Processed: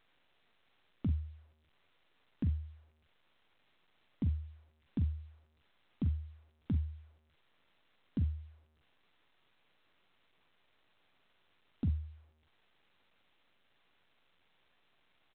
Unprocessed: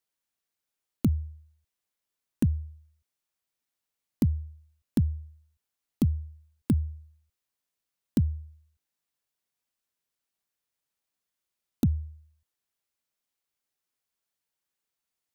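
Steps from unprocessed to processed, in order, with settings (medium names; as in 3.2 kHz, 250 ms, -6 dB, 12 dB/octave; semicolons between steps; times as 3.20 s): peak limiter -23 dBFS, peak gain reduction 9.5 dB; on a send: early reflections 11 ms -13.5 dB, 44 ms -11.5 dB; on the sum: trim -4 dB; A-law 64 kbps 8 kHz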